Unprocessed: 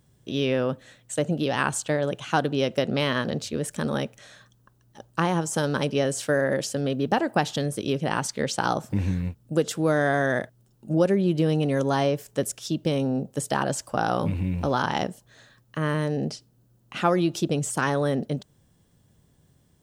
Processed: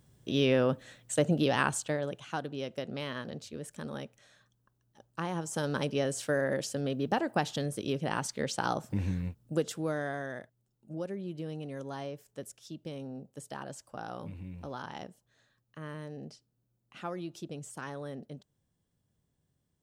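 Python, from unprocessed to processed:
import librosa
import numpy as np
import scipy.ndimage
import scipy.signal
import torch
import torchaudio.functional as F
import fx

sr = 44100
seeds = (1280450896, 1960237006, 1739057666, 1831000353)

y = fx.gain(x, sr, db=fx.line((1.46, -1.5), (2.4, -13.0), (5.09, -13.0), (5.72, -6.5), (9.55, -6.5), (10.38, -16.5)))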